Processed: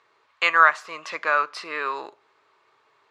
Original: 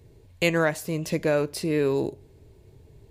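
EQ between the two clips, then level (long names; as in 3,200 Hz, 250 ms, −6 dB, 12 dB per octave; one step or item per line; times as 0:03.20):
high-pass with resonance 1,200 Hz, resonance Q 6.8
high-frequency loss of the air 140 metres
high-shelf EQ 9,200 Hz −4 dB
+5.0 dB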